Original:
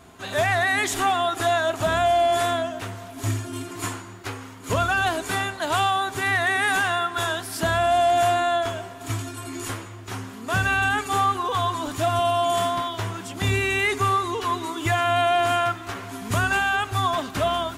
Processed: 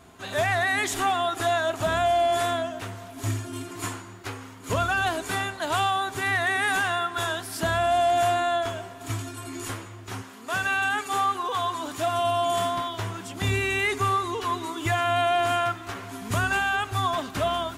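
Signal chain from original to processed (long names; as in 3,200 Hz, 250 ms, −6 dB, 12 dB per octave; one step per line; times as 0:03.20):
0:10.21–0:12.23: high-pass filter 490 Hz → 210 Hz 6 dB per octave
level −2.5 dB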